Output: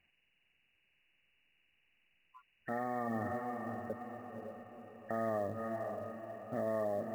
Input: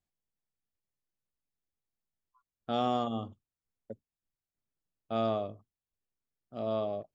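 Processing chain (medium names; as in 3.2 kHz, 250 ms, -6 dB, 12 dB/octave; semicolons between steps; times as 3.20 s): knee-point frequency compression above 1.5 kHz 4:1; compression 4:1, threshold -42 dBFS, peak gain reduction 14.5 dB; bass shelf 120 Hz -5 dB; echo that smears into a reverb 539 ms, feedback 48%, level -7.5 dB; peak limiter -39.5 dBFS, peak gain reduction 11 dB; short-mantissa float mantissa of 4-bit; trim +11.5 dB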